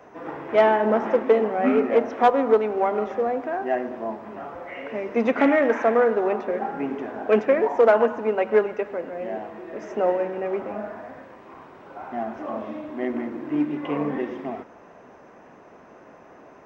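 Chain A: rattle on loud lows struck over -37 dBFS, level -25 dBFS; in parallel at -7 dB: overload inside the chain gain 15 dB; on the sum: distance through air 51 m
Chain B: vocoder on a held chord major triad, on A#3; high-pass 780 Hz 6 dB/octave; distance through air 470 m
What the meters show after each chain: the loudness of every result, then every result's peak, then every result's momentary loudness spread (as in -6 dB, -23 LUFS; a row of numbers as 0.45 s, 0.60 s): -20.5 LUFS, -32.0 LUFS; -6.0 dBFS, -12.0 dBFS; 16 LU, 17 LU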